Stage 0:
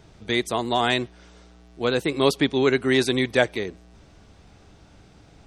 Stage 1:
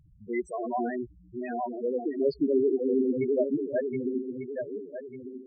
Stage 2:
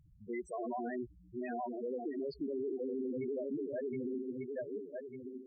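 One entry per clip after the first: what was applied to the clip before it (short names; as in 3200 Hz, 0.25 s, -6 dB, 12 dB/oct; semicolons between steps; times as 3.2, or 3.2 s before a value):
regenerating reverse delay 0.598 s, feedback 53%, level -2 dB; loudest bins only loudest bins 4; gain -3.5 dB
limiter -26.5 dBFS, peak gain reduction 11.5 dB; gain -5 dB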